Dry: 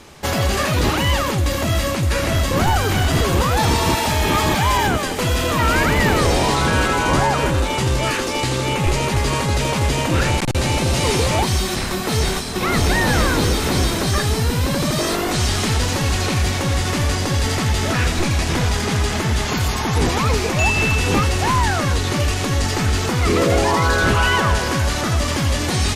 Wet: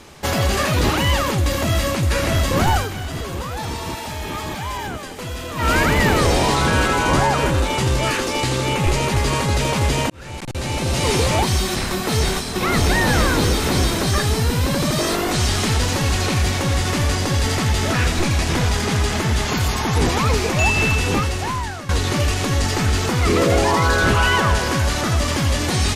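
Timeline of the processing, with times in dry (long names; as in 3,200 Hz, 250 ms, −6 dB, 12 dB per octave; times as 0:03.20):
0:02.75–0:05.70: duck −10 dB, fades 0.15 s
0:10.10–0:11.15: fade in linear
0:20.88–0:21.89: fade out, to −15 dB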